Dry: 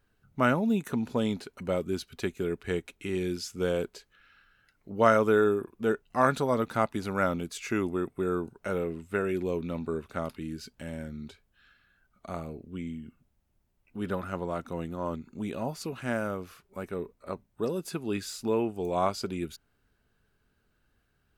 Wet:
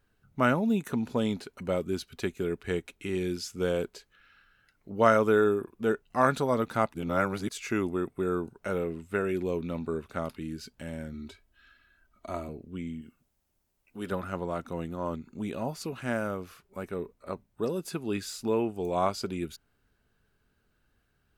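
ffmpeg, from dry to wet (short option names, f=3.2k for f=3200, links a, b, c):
-filter_complex "[0:a]asettb=1/sr,asplit=3[a][b][c];[a]atrim=end=11.134[d];[b]atrim=start=11.13:end=12.49,asetpts=PTS-STARTPTS,afade=t=in:d=0.004:c=qsin,afade=t=out:st=1.356:d=0.004:c=qsin,aecho=1:1:3.1:0.65,atrim=end_sample=59976[e];[c]atrim=start=12.486[f];[d][e]acrossfade=d=0.004:c1=hsin:c2=qsin[g];[g][f]acrossfade=d=0.004:c1=qsin:c2=hsin,asettb=1/sr,asplit=3[h][i][j];[h]atrim=end=13.014[k];[i]atrim=start=13.01:end=14.12,asetpts=PTS-STARTPTS,afade=t=in:d=0.004:c=qsin,afade=t=out:st=1.106:d=0.004:c=qsin,bass=f=250:g=-7,treble=f=4k:g=6[l];[j]atrim=start=14.116[m];[k][l]acrossfade=d=0.004:c1=hsin:c2=qsin[n];[n][m]acrossfade=d=0.004:c1=qsin:c2=hsin,asplit=3[o][p][q];[o]atrim=end=6.942[r];[p]atrim=start=6.938:end=7.492,asetpts=PTS-STARTPTS,areverse[s];[q]atrim=start=7.488[t];[r][s]acrossfade=d=0.004:c1=hsin:c2=hsin[u];[u][t]acrossfade=d=0.004:c1=hsin:c2=hsin"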